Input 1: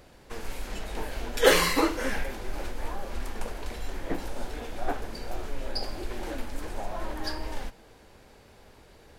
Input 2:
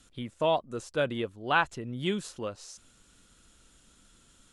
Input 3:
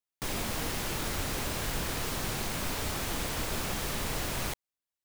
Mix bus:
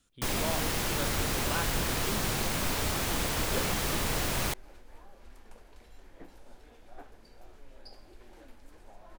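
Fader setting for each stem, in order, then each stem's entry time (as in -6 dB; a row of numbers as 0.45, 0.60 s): -18.5, -11.0, +3.0 dB; 2.10, 0.00, 0.00 s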